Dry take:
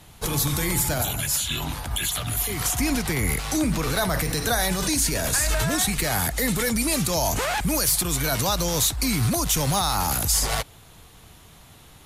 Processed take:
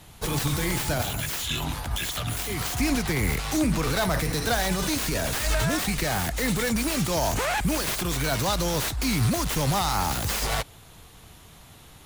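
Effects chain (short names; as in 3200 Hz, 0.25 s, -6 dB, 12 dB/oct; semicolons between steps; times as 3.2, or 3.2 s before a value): self-modulated delay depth 0.078 ms; slew limiter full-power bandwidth 380 Hz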